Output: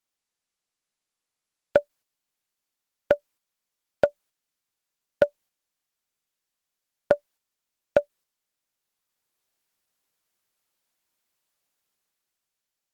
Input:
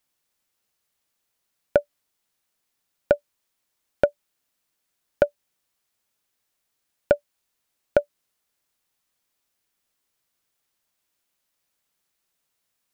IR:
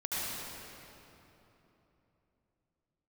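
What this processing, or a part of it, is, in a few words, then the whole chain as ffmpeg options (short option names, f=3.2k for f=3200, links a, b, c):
video call: -af "highpass=f=110:p=1,dynaudnorm=f=220:g=9:m=7.5dB,agate=range=-6dB:threshold=-48dB:ratio=16:detection=peak,volume=-2dB" -ar 48000 -c:a libopus -b:a 16k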